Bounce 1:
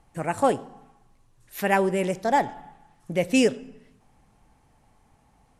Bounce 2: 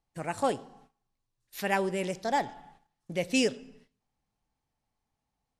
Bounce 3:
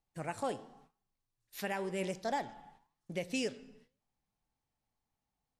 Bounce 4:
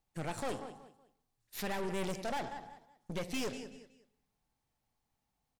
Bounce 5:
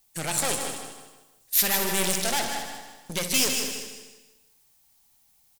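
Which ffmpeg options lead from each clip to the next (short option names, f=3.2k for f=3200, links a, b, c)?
-af "agate=range=-16dB:threshold=-51dB:ratio=16:detection=peak,equalizer=f=4.5k:w=1:g=8.5,volume=-7dB"
-af "flanger=delay=5:depth=4.6:regen=88:speed=0.95:shape=sinusoidal,alimiter=level_in=1dB:limit=-24dB:level=0:latency=1:release=259,volume=-1dB"
-af "aecho=1:1:187|374|561:0.15|0.0449|0.0135,aeval=exprs='(tanh(112*val(0)+0.65)-tanh(0.65))/112':c=same,volume=7dB"
-filter_complex "[0:a]asplit=2[a][b];[b]aecho=0:1:61.22|230.3:0.282|0.251[c];[a][c]amix=inputs=2:normalize=0,crystalizer=i=8:c=0,asplit=2[d][e];[e]aecho=0:1:155|310|465|620:0.422|0.164|0.0641|0.025[f];[d][f]amix=inputs=2:normalize=0,volume=4dB"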